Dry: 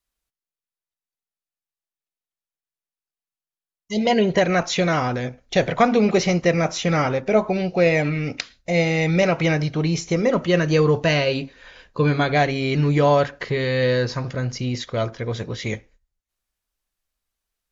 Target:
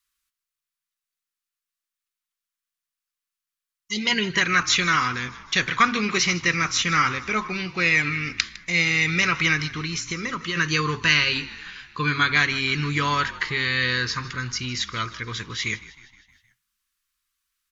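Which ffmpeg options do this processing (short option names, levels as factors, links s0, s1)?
-filter_complex "[0:a]firequalizer=gain_entry='entry(350,0);entry(630,-17);entry(1100,13)':delay=0.05:min_phase=1,asplit=3[s0][s1][s2];[s0]afade=t=out:st=9.66:d=0.02[s3];[s1]acompressor=threshold=0.126:ratio=6,afade=t=in:st=9.66:d=0.02,afade=t=out:st=10.55:d=0.02[s4];[s2]afade=t=in:st=10.55:d=0.02[s5];[s3][s4][s5]amix=inputs=3:normalize=0,asplit=2[s6][s7];[s7]asplit=5[s8][s9][s10][s11][s12];[s8]adelay=156,afreqshift=-46,volume=0.126[s13];[s9]adelay=312,afreqshift=-92,volume=0.0733[s14];[s10]adelay=468,afreqshift=-138,volume=0.0422[s15];[s11]adelay=624,afreqshift=-184,volume=0.0245[s16];[s12]adelay=780,afreqshift=-230,volume=0.0143[s17];[s13][s14][s15][s16][s17]amix=inputs=5:normalize=0[s18];[s6][s18]amix=inputs=2:normalize=0,volume=0.422"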